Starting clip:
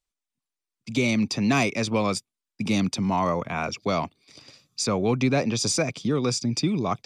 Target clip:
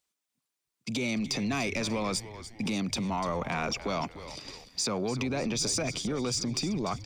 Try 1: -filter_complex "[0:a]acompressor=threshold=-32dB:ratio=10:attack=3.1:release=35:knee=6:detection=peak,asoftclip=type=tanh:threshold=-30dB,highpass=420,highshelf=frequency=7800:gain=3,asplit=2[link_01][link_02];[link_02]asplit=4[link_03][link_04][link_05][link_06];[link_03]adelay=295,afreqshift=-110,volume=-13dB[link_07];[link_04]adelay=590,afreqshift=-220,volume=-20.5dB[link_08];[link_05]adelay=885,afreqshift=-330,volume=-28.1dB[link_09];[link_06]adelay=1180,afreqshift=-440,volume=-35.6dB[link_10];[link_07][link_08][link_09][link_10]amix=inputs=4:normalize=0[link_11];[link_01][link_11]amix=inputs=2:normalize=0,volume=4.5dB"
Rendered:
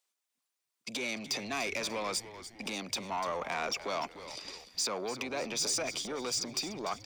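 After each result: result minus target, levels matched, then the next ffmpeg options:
125 Hz band −12.0 dB; soft clipping: distortion +11 dB
-filter_complex "[0:a]acompressor=threshold=-32dB:ratio=10:attack=3.1:release=35:knee=6:detection=peak,asoftclip=type=tanh:threshold=-30dB,highpass=120,highshelf=frequency=7800:gain=3,asplit=2[link_01][link_02];[link_02]asplit=4[link_03][link_04][link_05][link_06];[link_03]adelay=295,afreqshift=-110,volume=-13dB[link_07];[link_04]adelay=590,afreqshift=-220,volume=-20.5dB[link_08];[link_05]adelay=885,afreqshift=-330,volume=-28.1dB[link_09];[link_06]adelay=1180,afreqshift=-440,volume=-35.6dB[link_10];[link_07][link_08][link_09][link_10]amix=inputs=4:normalize=0[link_11];[link_01][link_11]amix=inputs=2:normalize=0,volume=4.5dB"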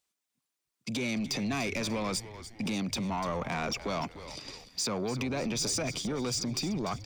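soft clipping: distortion +11 dB
-filter_complex "[0:a]acompressor=threshold=-32dB:ratio=10:attack=3.1:release=35:knee=6:detection=peak,asoftclip=type=tanh:threshold=-23dB,highpass=120,highshelf=frequency=7800:gain=3,asplit=2[link_01][link_02];[link_02]asplit=4[link_03][link_04][link_05][link_06];[link_03]adelay=295,afreqshift=-110,volume=-13dB[link_07];[link_04]adelay=590,afreqshift=-220,volume=-20.5dB[link_08];[link_05]adelay=885,afreqshift=-330,volume=-28.1dB[link_09];[link_06]adelay=1180,afreqshift=-440,volume=-35.6dB[link_10];[link_07][link_08][link_09][link_10]amix=inputs=4:normalize=0[link_11];[link_01][link_11]amix=inputs=2:normalize=0,volume=4.5dB"

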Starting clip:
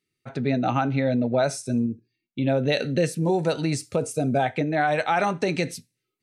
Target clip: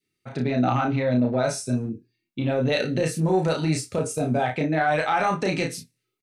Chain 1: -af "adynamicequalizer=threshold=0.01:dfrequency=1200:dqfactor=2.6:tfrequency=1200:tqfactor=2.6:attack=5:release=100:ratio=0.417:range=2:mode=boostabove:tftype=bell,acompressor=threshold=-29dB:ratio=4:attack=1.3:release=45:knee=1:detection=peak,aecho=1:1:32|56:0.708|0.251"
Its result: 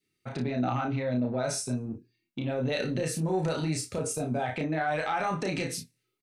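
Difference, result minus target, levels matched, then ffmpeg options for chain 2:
downward compressor: peak gain reduction +7 dB
-af "adynamicequalizer=threshold=0.01:dfrequency=1200:dqfactor=2.6:tfrequency=1200:tqfactor=2.6:attack=5:release=100:ratio=0.417:range=2:mode=boostabove:tftype=bell,acompressor=threshold=-19.5dB:ratio=4:attack=1.3:release=45:knee=1:detection=peak,aecho=1:1:32|56:0.708|0.251"

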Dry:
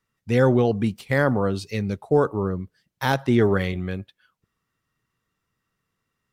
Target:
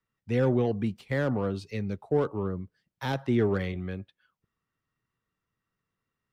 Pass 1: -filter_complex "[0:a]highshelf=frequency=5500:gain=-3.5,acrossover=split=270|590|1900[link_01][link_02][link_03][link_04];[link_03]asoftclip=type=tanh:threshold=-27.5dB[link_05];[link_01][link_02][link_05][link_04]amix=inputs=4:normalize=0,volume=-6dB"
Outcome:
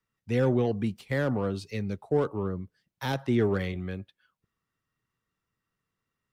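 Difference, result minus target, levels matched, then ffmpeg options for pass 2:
8,000 Hz band +4.0 dB
-filter_complex "[0:a]highshelf=frequency=5500:gain=-10.5,acrossover=split=270|590|1900[link_01][link_02][link_03][link_04];[link_03]asoftclip=type=tanh:threshold=-27.5dB[link_05];[link_01][link_02][link_05][link_04]amix=inputs=4:normalize=0,volume=-6dB"

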